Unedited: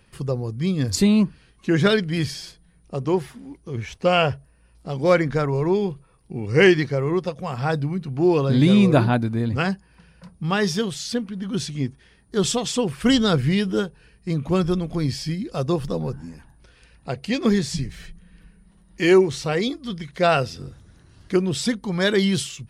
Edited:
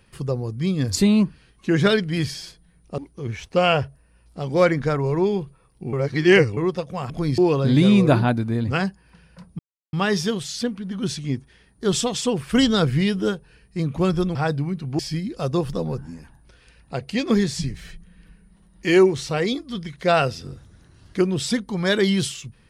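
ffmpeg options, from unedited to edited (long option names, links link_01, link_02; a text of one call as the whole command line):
ffmpeg -i in.wav -filter_complex "[0:a]asplit=9[link_01][link_02][link_03][link_04][link_05][link_06][link_07][link_08][link_09];[link_01]atrim=end=2.982[link_10];[link_02]atrim=start=3.468:end=6.422[link_11];[link_03]atrim=start=6.418:end=7.062,asetpts=PTS-STARTPTS,areverse[link_12];[link_04]atrim=start=7.058:end=7.592[link_13];[link_05]atrim=start=14.858:end=15.142[link_14];[link_06]atrim=start=8.228:end=10.44,asetpts=PTS-STARTPTS,afade=type=out:start_time=2.208:duration=0.004:curve=hsin,apad=pad_dur=0.34[link_15];[link_07]atrim=start=10.44:end=14.862,asetpts=PTS-STARTPTS,afade=type=in:duration=0.004:curve=hsin[link_16];[link_08]atrim=start=7.588:end=8.232[link_17];[link_09]atrim=start=15.138[link_18];[link_10][link_11]acrossfade=duration=0.004:curve1=hsin:curve2=hsin[link_19];[link_19][link_12]acrossfade=duration=0.004:curve1=hsin:curve2=hsin[link_20];[link_20][link_13]acrossfade=duration=0.004:curve1=hsin:curve2=hsin[link_21];[link_21][link_14]acrossfade=duration=0.004:curve1=hsin:curve2=hsin[link_22];[link_15][link_16]concat=n=2:v=0:a=1[link_23];[link_22][link_23]acrossfade=duration=0.004:curve1=hsin:curve2=hsin[link_24];[link_24][link_17]acrossfade=duration=0.004:curve1=hsin:curve2=hsin[link_25];[link_25][link_18]acrossfade=duration=0.004:curve1=hsin:curve2=hsin" out.wav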